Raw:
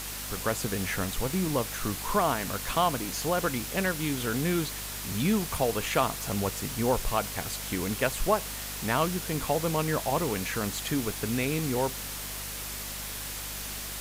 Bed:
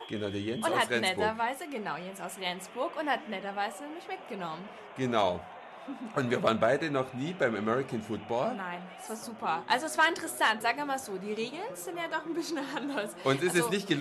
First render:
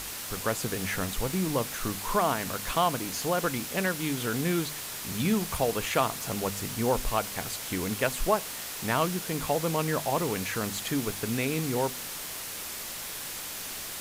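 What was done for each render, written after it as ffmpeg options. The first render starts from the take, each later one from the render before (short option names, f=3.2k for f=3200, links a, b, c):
-af "bandreject=f=50:t=h:w=4,bandreject=f=100:t=h:w=4,bandreject=f=150:t=h:w=4,bandreject=f=200:t=h:w=4,bandreject=f=250:t=h:w=4"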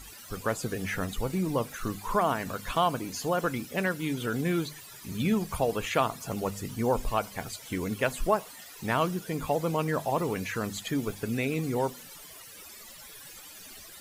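-af "afftdn=nr=16:nf=-38"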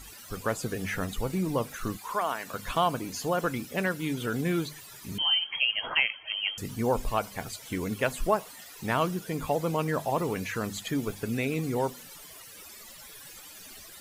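-filter_complex "[0:a]asettb=1/sr,asplit=3[a][b][c];[a]atrim=end=1.974[d];[b]atrim=start=1.97:end=2.54,asetpts=PTS-STARTPTS,afade=t=in:d=0.004:c=qsin,afade=t=out:st=0.566:d=0.004:c=qsin,highpass=f=850:p=1[e];[c]atrim=start=2.536[f];[d][e]acrossfade=d=0.004:c1=hsin:c2=qsin[g];[g][f]acrossfade=d=0.004:c1=qsin:c2=hsin,asettb=1/sr,asplit=3[h][i][j];[h]atrim=end=5.184[k];[i]atrim=start=5.18:end=6.58,asetpts=PTS-STARTPTS,afade=t=in:d=0.004:c=qsin,afade=t=out:st=1.396:d=0.004:c=qsin,lowpass=f=2.8k:t=q:w=0.5098,lowpass=f=2.8k:t=q:w=0.6013,lowpass=f=2.8k:t=q:w=0.9,lowpass=f=2.8k:t=q:w=2.563,afreqshift=-3300[l];[j]atrim=start=6.576[m];[k][l]acrossfade=d=0.004:c1=hsin:c2=qsin[n];[n][m]acrossfade=d=0.004:c1=qsin:c2=hsin"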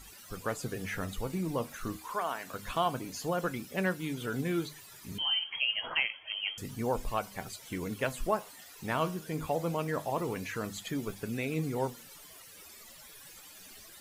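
-af "flanger=delay=5.2:depth=7.6:regen=78:speed=0.27:shape=sinusoidal"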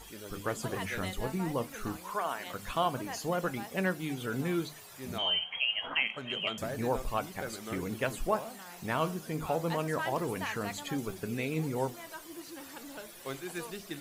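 -filter_complex "[1:a]volume=-12.5dB[a];[0:a][a]amix=inputs=2:normalize=0"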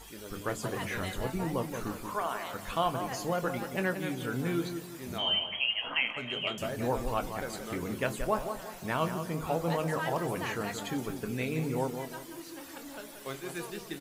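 -filter_complex "[0:a]asplit=2[a][b];[b]adelay=24,volume=-12dB[c];[a][c]amix=inputs=2:normalize=0,asplit=2[d][e];[e]adelay=178,lowpass=f=1.6k:p=1,volume=-7dB,asplit=2[f][g];[g]adelay=178,lowpass=f=1.6k:p=1,volume=0.4,asplit=2[h][i];[i]adelay=178,lowpass=f=1.6k:p=1,volume=0.4,asplit=2[j][k];[k]adelay=178,lowpass=f=1.6k:p=1,volume=0.4,asplit=2[l][m];[m]adelay=178,lowpass=f=1.6k:p=1,volume=0.4[n];[d][f][h][j][l][n]amix=inputs=6:normalize=0"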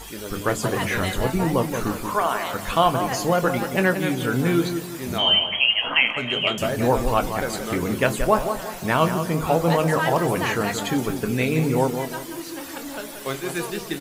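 -af "volume=11dB"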